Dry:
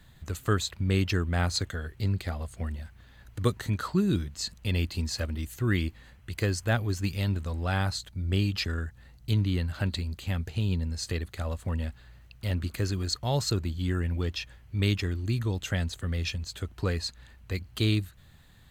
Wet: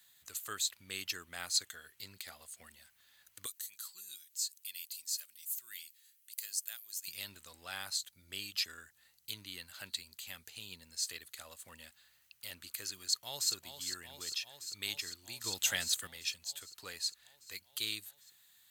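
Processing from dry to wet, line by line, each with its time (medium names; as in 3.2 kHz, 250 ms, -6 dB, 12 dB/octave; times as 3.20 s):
3.46–7.08 s: pre-emphasis filter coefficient 0.97
12.99–13.52 s: echo throw 400 ms, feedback 80%, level -8.5 dB
15.44–16.07 s: gain +9 dB
whole clip: differentiator; trim +2.5 dB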